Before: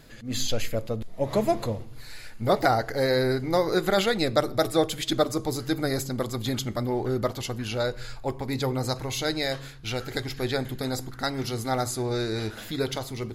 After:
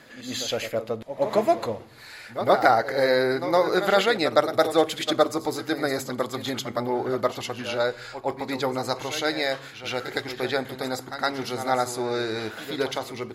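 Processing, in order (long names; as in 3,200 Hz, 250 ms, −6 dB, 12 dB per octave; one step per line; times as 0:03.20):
high-pass filter 750 Hz 6 dB per octave
high-shelf EQ 3,000 Hz −11.5 dB
on a send: backwards echo 113 ms −10.5 dB
on the sum: level +8 dB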